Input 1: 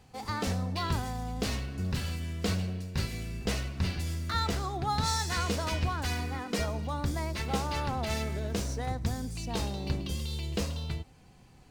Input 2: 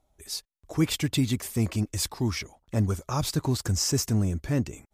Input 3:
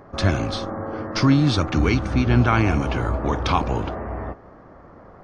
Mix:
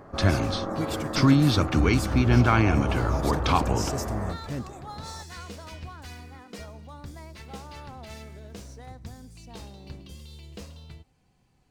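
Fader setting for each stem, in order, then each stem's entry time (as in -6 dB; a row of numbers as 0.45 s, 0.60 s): -10.0 dB, -8.0 dB, -2.0 dB; 0.00 s, 0.00 s, 0.00 s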